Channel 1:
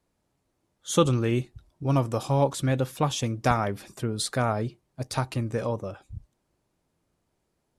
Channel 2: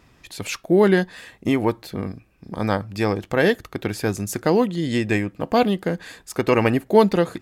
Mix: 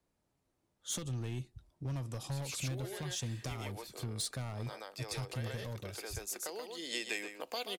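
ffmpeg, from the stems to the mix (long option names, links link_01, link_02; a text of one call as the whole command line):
ffmpeg -i stem1.wav -i stem2.wav -filter_complex "[0:a]acompressor=threshold=-23dB:ratio=6,asoftclip=type=hard:threshold=-24.5dB,volume=-5.5dB,asplit=2[link_01][link_02];[1:a]highpass=frequency=410:width=0.5412,highpass=frequency=410:width=1.3066,bandreject=frequency=1700:width=23,acompressor=threshold=-21dB:ratio=6,adelay=2000,volume=0dB,asplit=2[link_03][link_04];[link_04]volume=-11.5dB[link_05];[link_02]apad=whole_len=415379[link_06];[link_03][link_06]sidechaincompress=threshold=-46dB:ratio=6:attack=6.2:release=1250[link_07];[link_05]aecho=0:1:129:1[link_08];[link_01][link_07][link_08]amix=inputs=3:normalize=0,acrossover=split=160|3000[link_09][link_10][link_11];[link_10]acompressor=threshold=-49dB:ratio=2.5[link_12];[link_09][link_12][link_11]amix=inputs=3:normalize=0" out.wav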